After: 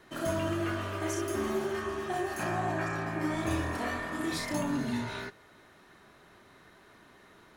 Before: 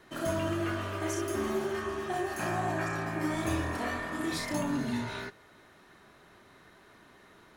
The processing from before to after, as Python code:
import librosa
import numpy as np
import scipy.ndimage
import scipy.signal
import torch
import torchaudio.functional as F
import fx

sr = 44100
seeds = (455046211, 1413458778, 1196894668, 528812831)

y = fx.high_shelf(x, sr, hz=6800.0, db=-6.0, at=(2.43, 3.51))